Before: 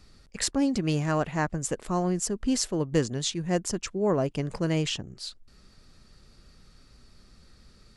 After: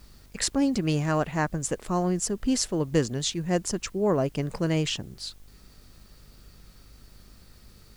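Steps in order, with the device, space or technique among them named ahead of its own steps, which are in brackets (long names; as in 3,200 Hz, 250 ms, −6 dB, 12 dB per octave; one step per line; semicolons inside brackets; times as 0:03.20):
video cassette with head-switching buzz (hum with harmonics 50 Hz, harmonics 32, −56 dBFS −8 dB per octave; white noise bed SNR 34 dB)
level +1 dB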